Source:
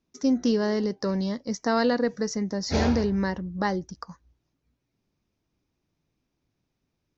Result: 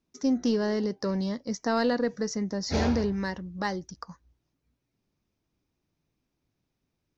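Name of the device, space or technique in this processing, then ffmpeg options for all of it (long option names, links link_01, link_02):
parallel distortion: -filter_complex "[0:a]asplit=2[link_01][link_02];[link_02]asoftclip=type=hard:threshold=-24dB,volume=-13dB[link_03];[link_01][link_03]amix=inputs=2:normalize=0,asettb=1/sr,asplit=3[link_04][link_05][link_06];[link_04]atrim=end=3.124[link_07];[link_05]atrim=start=3.12:end=3.93,asetpts=PTS-STARTPTS,afade=type=in:duration=0.004:curve=qsin,afade=type=out:start_time=0.806:duration=0.004:curve=qsin,tiltshelf=frequency=1400:gain=-3.5[link_08];[link_06]atrim=start=3.926[link_09];[link_07][link_08]acrossfade=duration=0.004:curve1=hsin:curve2=qsin[link_10];[link_10][link_09]acrossfade=duration=0.004:curve1=qsin:curve2=hsin,volume=-3.5dB"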